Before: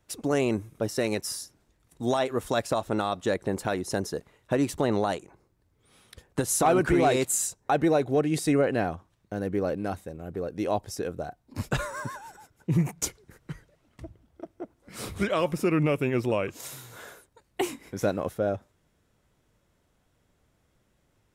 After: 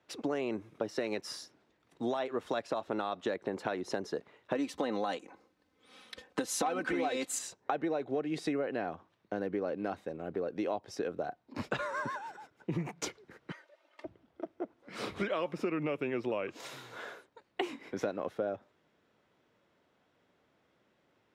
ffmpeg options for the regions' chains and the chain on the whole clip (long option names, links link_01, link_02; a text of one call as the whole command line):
ffmpeg -i in.wav -filter_complex "[0:a]asettb=1/sr,asplit=3[link_01][link_02][link_03];[link_01]atrim=end=4.554[link_04];[link_02]atrim=start=4.55:end=7.39,asetpts=PTS-STARTPTS,afade=type=in:duration=0.004:curve=qsin,afade=type=out:start_time=2.836:duration=0.004:curve=qsin,highshelf=frequency=3600:gain=8.5,aecho=1:1:3.9:0.62,atrim=end_sample=125244[link_05];[link_03]atrim=start=7.386[link_06];[link_04][link_05]acrossfade=duration=0.004:curve1=hsin:curve2=qsin[link_07];[link_07][link_06]acrossfade=duration=0.004:curve1=qsin:curve2=hsin,asettb=1/sr,asplit=3[link_08][link_09][link_10];[link_08]atrim=end=13.514[link_11];[link_09]atrim=start=13.51:end=14.05,asetpts=PTS-STARTPTS,afade=type=in:duration=0.004:curve=qsin,afade=type=out:start_time=0.536:duration=0.004:curve=qsin,highpass=frequency=450:width=0.5412,highpass=frequency=450:width=1.3066,aecho=1:1:3.3:0.73,atrim=end_sample=23814[link_12];[link_10]atrim=start=14.046[link_13];[link_11][link_12]acrossfade=duration=0.004:curve1=hsin:curve2=qsin[link_14];[link_14][link_13]acrossfade=duration=0.004:curve1=qsin:curve2=hsin,highpass=88,acrossover=split=210 4800:gain=0.224 1 0.0891[link_15][link_16][link_17];[link_15][link_16][link_17]amix=inputs=3:normalize=0,acompressor=threshold=-32dB:ratio=6,volume=1.5dB" out.wav